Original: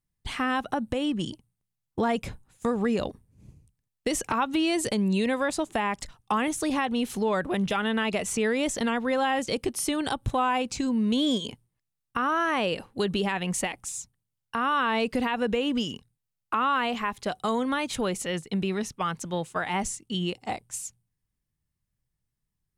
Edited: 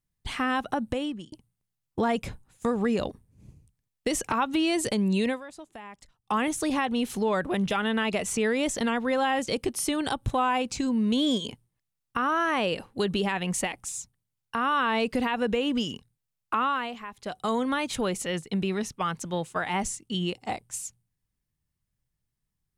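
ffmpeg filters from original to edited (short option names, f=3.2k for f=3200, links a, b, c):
-filter_complex "[0:a]asplit=6[a][b][c][d][e][f];[a]atrim=end=1.32,asetpts=PTS-STARTPTS,afade=t=out:st=0.92:d=0.4[g];[b]atrim=start=1.32:end=5.41,asetpts=PTS-STARTPTS,afade=t=in:d=0.004:c=hsin,afade=t=out:st=3.96:d=0.13:silence=0.158489[h];[c]atrim=start=5.41:end=6.22,asetpts=PTS-STARTPTS,volume=-16dB[i];[d]atrim=start=6.22:end=16.97,asetpts=PTS-STARTPTS,afade=t=in:d=0.13:silence=0.158489,afade=t=out:st=10.37:d=0.38:silence=0.298538[j];[e]atrim=start=16.97:end=17.14,asetpts=PTS-STARTPTS,volume=-10.5dB[k];[f]atrim=start=17.14,asetpts=PTS-STARTPTS,afade=t=in:d=0.38:silence=0.298538[l];[g][h][i][j][k][l]concat=n=6:v=0:a=1"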